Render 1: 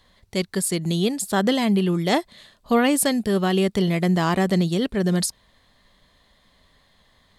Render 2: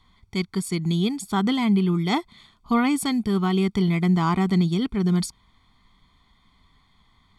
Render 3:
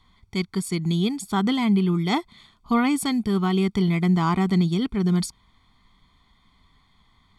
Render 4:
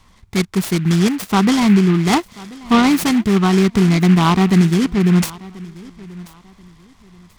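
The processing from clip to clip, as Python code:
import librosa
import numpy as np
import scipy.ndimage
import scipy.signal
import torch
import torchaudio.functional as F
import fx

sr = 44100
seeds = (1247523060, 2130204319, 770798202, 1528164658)

y1 = fx.lowpass(x, sr, hz=3600.0, slope=6)
y1 = y1 + 0.88 * np.pad(y1, (int(0.9 * sr / 1000.0), 0))[:len(y1)]
y1 = F.gain(torch.from_numpy(y1), -3.5).numpy()
y2 = y1
y3 = fx.echo_feedback(y2, sr, ms=1035, feedback_pct=27, wet_db=-21.0)
y3 = fx.noise_mod_delay(y3, sr, seeds[0], noise_hz=1800.0, depth_ms=0.062)
y3 = F.gain(torch.from_numpy(y3), 8.0).numpy()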